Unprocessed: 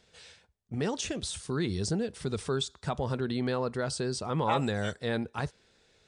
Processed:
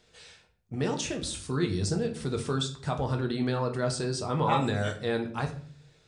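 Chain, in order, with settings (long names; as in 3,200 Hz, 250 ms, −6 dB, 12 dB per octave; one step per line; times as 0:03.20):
rectangular room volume 55 cubic metres, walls mixed, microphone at 0.45 metres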